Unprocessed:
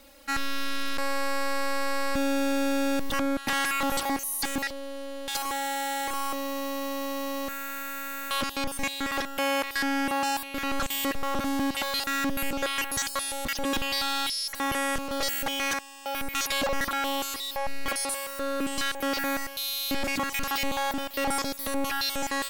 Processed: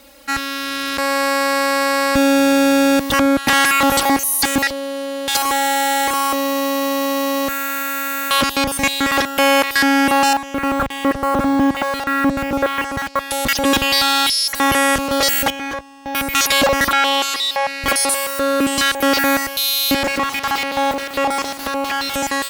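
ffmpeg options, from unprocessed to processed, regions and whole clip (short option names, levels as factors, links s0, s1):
-filter_complex "[0:a]asettb=1/sr,asplit=3[s0][s1][s2];[s0]atrim=end=10.334[s3];[s1]atrim=start=10.33:end=13.31,asetpts=PTS-STARTPTS,afade=t=in:d=0.004:c=qsin,afade=t=out:st=2.976:d=0.004:c=qsin,lowpass=1600,acrusher=bits=6:mix=0:aa=0.5[s4];[s2]atrim=start=13.306[s5];[s3][s4]acrossfade=d=0.004:c1=hsin:c2=qsin[s6];[s6][s5]acrossfade=d=0.004:c1=qsin:c2=hsin,asettb=1/sr,asplit=3[s7][s8][s9];[s7]atrim=end=15.504[s10];[s8]atrim=start=15.5:end=16.15,asetpts=PTS-STARTPTS,afade=t=in:d=0.004:c=qsin,afade=t=out:st=0.646:d=0.004:c=qsin,aeval=exprs='max(val(0),0)':c=same,lowpass=f=1100:p=1,asplit=2[s11][s12];[s12]adelay=17,volume=0.211[s13];[s11][s13]amix=inputs=2:normalize=0,atrim=end_sample=28665[s14];[s9]atrim=start=16.146[s15];[s10][s14]acrossfade=d=0.004:c1=hsin:c2=qsin[s16];[s16][s15]acrossfade=d=0.004:c1=qsin:c2=hsin,asettb=1/sr,asplit=3[s17][s18][s19];[s17]atrim=end=16.924[s20];[s18]atrim=start=16.92:end=17.84,asetpts=PTS-STARTPTS,afade=t=in:d=0.004:c=qsin,afade=t=out:st=0.916:d=0.004:c=qsin,highpass=110,lowpass=3300,aemphasis=mode=production:type=riaa[s21];[s19]atrim=start=17.836[s22];[s20][s21]acrossfade=d=0.004:c1=hsin:c2=qsin[s23];[s23][s22]acrossfade=d=0.004:c1=qsin:c2=hsin,asettb=1/sr,asplit=3[s24][s25][s26];[s24]atrim=end=20.034[s27];[s25]atrim=start=20.03:end=22.14,asetpts=PTS-STARTPTS,afade=t=in:d=0.004:c=qsin,afade=t=out:st=2.106:d=0.004:c=qsin,acrusher=bits=4:dc=4:mix=0:aa=0.000001,asplit=2[s28][s29];[s29]highpass=f=720:p=1,volume=14.1,asoftclip=type=tanh:threshold=0.0631[s30];[s28][s30]amix=inputs=2:normalize=0,lowpass=f=2000:p=1,volume=0.501[s31];[s26]atrim=start=22.136[s32];[s27][s31]acrossfade=d=0.004:c1=hsin:c2=qsin[s33];[s33][s32]acrossfade=d=0.004:c1=qsin:c2=hsin,highpass=44,dynaudnorm=f=610:g=3:m=1.78,volume=2.51"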